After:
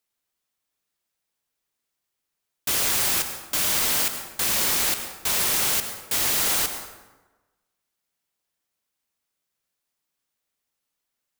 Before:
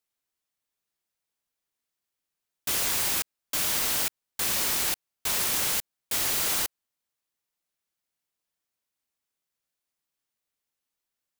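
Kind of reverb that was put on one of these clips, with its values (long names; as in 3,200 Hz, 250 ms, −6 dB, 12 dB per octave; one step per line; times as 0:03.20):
dense smooth reverb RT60 1.2 s, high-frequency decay 0.6×, pre-delay 80 ms, DRR 7 dB
level +3.5 dB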